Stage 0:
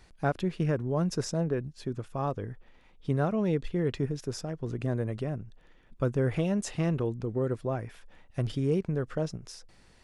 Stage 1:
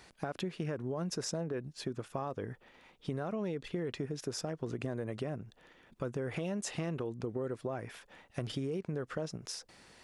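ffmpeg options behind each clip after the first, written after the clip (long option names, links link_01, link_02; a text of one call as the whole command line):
ffmpeg -i in.wav -af "highpass=frequency=260:poles=1,alimiter=level_in=0.5dB:limit=-24dB:level=0:latency=1:release=33,volume=-0.5dB,acompressor=threshold=-38dB:ratio=6,volume=4.5dB" out.wav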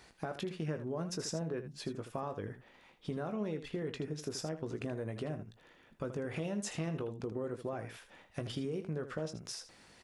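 ffmpeg -i in.wav -af "aecho=1:1:19|79:0.335|0.282,volume=-2dB" out.wav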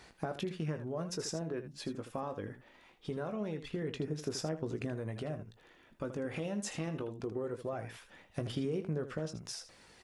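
ffmpeg -i in.wav -af "aphaser=in_gain=1:out_gain=1:delay=3.8:decay=0.27:speed=0.23:type=sinusoidal" out.wav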